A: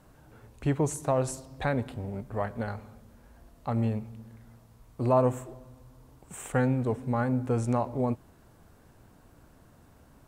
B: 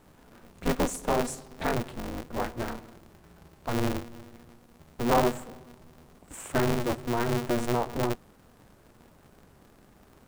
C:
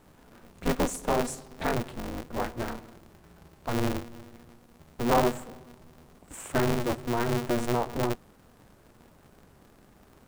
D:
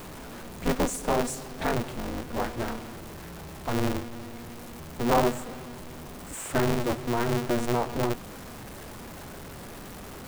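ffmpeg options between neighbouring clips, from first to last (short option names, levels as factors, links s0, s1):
-af "aeval=exprs='val(0)*sgn(sin(2*PI*120*n/s))':c=same"
-af anull
-af "aeval=exprs='val(0)+0.5*0.0141*sgn(val(0))':c=same"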